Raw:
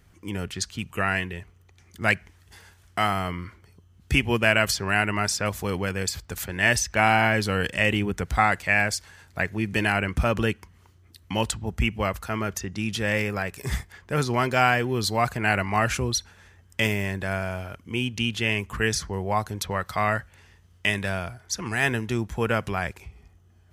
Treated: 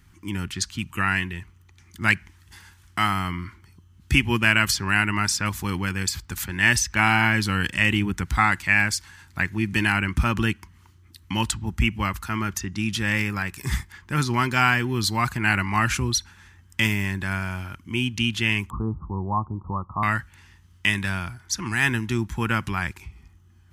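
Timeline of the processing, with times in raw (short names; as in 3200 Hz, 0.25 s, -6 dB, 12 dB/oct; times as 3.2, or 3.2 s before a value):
18.7–20.03 steep low-pass 1200 Hz 96 dB/oct
whole clip: band shelf 550 Hz -13.5 dB 1 oct; gain +2.5 dB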